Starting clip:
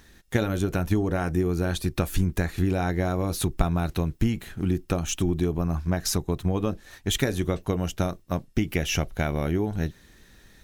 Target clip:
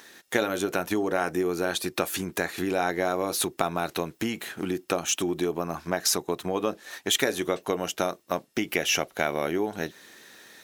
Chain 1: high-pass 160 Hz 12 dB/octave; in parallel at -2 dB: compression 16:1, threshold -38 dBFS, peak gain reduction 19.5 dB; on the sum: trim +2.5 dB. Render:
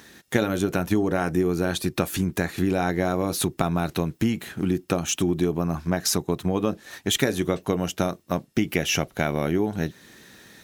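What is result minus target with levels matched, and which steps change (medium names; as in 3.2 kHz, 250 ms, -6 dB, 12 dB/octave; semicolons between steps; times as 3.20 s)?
125 Hz band +9.0 dB
change: high-pass 390 Hz 12 dB/octave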